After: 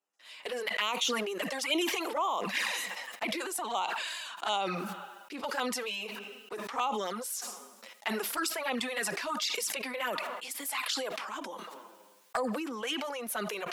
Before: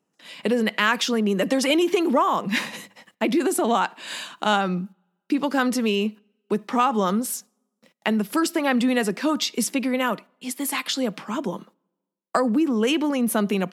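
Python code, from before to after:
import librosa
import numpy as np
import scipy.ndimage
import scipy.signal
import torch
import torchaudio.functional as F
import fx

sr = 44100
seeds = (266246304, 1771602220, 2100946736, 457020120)

y = scipy.signal.sosfilt(scipy.signal.butter(2, 680.0, 'highpass', fs=sr, output='sos'), x)
y = fx.env_flanger(y, sr, rest_ms=10.0, full_db=-20.0)
y = fx.sustainer(y, sr, db_per_s=24.0)
y = F.gain(torch.from_numpy(y), -5.0).numpy()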